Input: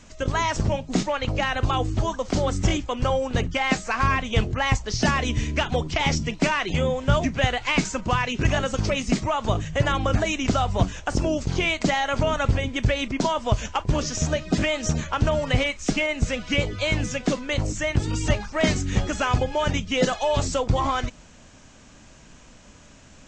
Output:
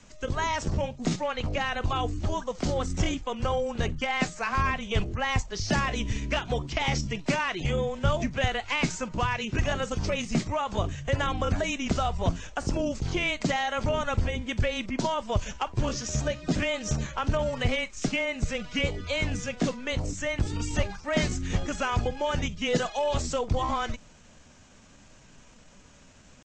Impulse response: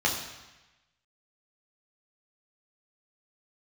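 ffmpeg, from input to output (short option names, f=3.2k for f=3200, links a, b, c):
-af "afreqshift=-16,atempo=0.88,volume=-4.5dB"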